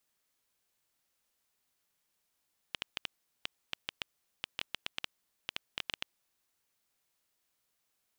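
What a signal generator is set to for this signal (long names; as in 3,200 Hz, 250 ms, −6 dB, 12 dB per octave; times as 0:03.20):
Geiger counter clicks 6.1 per second −16 dBFS 3.62 s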